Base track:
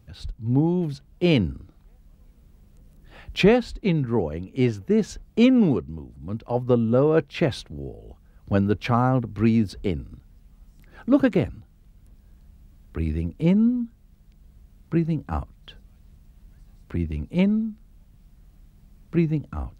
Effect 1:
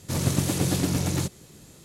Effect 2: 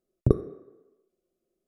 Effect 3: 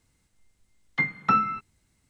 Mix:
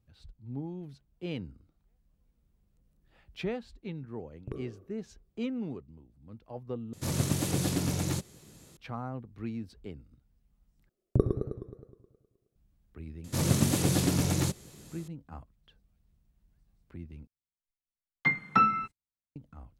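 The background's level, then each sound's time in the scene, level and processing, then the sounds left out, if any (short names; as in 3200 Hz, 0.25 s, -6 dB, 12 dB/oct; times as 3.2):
base track -17.5 dB
4.21 add 2 -18 dB + transient shaper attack -2 dB, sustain +10 dB
6.93 replace with 1 -5 dB
10.89 replace with 2 -4 dB + warbling echo 0.105 s, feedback 60%, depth 155 cents, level -6.5 dB
13.24 add 1 -2 dB
17.27 replace with 3 -1.5 dB + gate -54 dBFS, range -36 dB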